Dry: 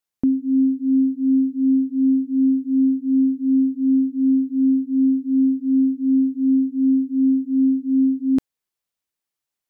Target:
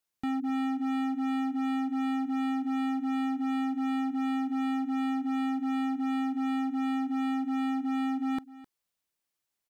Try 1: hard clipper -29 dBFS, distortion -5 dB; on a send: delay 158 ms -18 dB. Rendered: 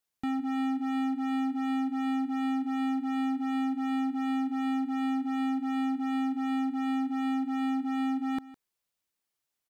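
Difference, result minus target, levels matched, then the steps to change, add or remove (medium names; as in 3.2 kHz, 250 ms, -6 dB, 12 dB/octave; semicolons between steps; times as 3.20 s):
echo 101 ms early
change: delay 259 ms -18 dB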